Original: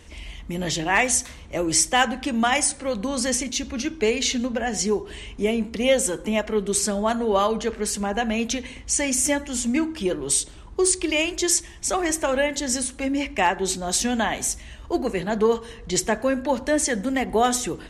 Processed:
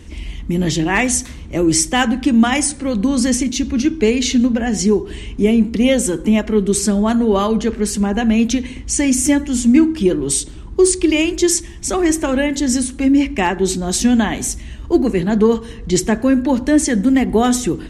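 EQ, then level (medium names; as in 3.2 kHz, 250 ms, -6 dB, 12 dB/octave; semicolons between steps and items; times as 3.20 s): resonant low shelf 420 Hz +7.5 dB, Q 1.5; +3.0 dB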